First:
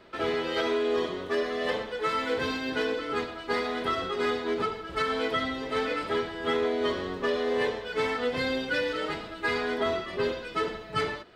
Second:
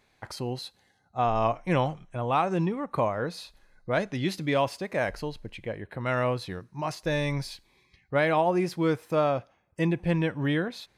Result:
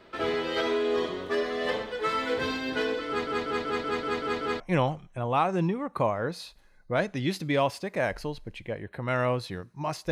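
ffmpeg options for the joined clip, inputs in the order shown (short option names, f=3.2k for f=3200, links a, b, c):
-filter_complex "[0:a]apad=whole_dur=10.11,atrim=end=10.11,asplit=8[a][b][c][d][e][f][g][h];[a]atrim=end=3.272[i];[b]atrim=start=3.078:end=3.272[j];[c]atrim=start=3.078:end=3.272[k];[d]atrim=start=3.078:end=3.272[l];[e]atrim=start=3.078:end=3.272[m];[f]atrim=start=3.078:end=3.272[n];[g]atrim=start=3.078:end=3.272[o];[h]atrim=start=3.078:end=3.272[p];[1:a]atrim=start=1.578:end=7.09[q];[i][j]acrossfade=d=0.004:c1=hsin:c2=hsin[r];[r][k]acrossfade=d=0.004:c1=hsin:c2=hsin[s];[s][l]acrossfade=d=0.004:c1=hsin:c2=hsin[t];[t][m]acrossfade=d=0.004:c1=hsin:c2=hsin[u];[u][n]acrossfade=d=0.004:c1=hsin:c2=hsin[v];[v][o]acrossfade=d=0.004:c1=hsin:c2=hsin[w];[w][p]acrossfade=d=0.004:c1=hsin:c2=hsin[x];[x][q]acrossfade=d=0.004:c1=hsin:c2=hsin"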